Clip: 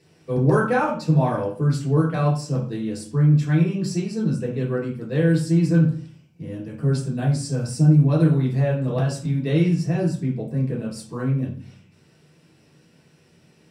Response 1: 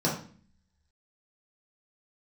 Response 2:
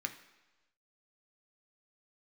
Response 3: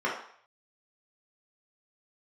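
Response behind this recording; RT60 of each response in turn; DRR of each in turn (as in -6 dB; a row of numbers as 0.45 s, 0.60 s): 1; 0.45 s, 1.1 s, 0.60 s; -6.0 dB, 5.0 dB, -5.5 dB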